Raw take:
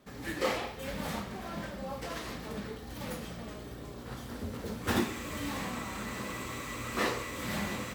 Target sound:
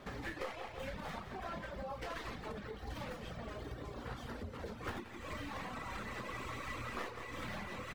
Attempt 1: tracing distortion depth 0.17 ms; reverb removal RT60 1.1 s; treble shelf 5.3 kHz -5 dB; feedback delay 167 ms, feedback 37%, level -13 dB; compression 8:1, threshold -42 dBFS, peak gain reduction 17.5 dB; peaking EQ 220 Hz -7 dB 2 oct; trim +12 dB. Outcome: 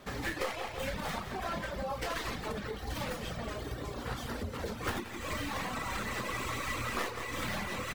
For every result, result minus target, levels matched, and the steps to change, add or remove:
compression: peak gain reduction -7 dB; 8 kHz band +6.0 dB
change: compression 8:1, threshold -50 dBFS, peak gain reduction 24.5 dB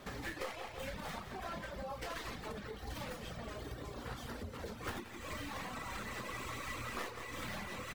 8 kHz band +6.0 dB
change: treble shelf 5.3 kHz -15.5 dB

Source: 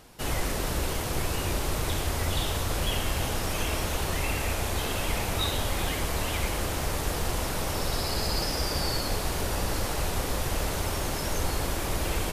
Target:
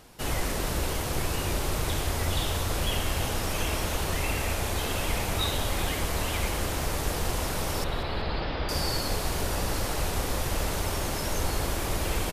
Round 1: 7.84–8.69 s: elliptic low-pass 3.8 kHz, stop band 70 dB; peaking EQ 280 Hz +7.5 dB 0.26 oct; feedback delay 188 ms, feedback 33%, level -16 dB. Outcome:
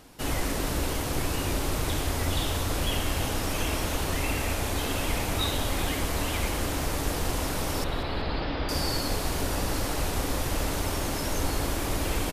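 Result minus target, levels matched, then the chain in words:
250 Hz band +2.5 dB
7.84–8.69 s: elliptic low-pass 3.8 kHz, stop band 70 dB; feedback delay 188 ms, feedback 33%, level -16 dB

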